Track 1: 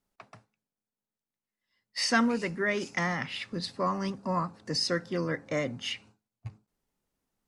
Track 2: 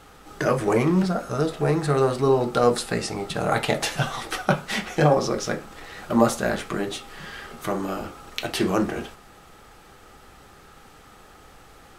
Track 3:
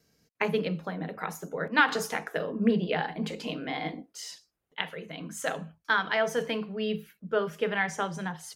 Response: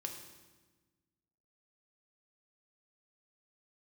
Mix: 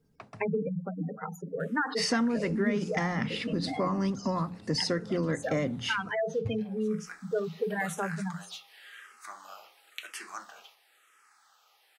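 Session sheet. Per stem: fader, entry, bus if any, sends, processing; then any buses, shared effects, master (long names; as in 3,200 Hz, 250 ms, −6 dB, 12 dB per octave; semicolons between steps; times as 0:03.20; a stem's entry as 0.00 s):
+0.5 dB, 0.00 s, bus A, no send, no processing
−7.5 dB, 1.60 s, no bus, no send, high-pass filter 1,200 Hz 12 dB per octave; frequency shifter mixed with the dry sound −0.96 Hz; automatic ducking −20 dB, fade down 0.25 s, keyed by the first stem
−4.0 dB, 0.00 s, bus A, no send, gate on every frequency bin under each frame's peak −10 dB strong
bus A: 0.0 dB, low-shelf EQ 470 Hz +8.5 dB; downward compressor 4 to 1, threshold −25 dBFS, peak gain reduction 9.5 dB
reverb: not used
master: mains-hum notches 60/120/180 Hz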